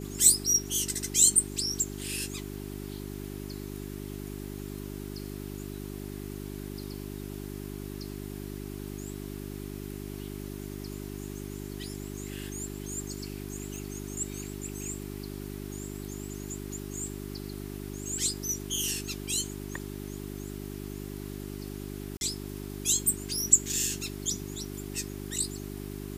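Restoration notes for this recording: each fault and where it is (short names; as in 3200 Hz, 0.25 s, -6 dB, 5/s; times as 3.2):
hum 50 Hz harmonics 8 -39 dBFS
13.76 pop
22.17–22.21 gap 41 ms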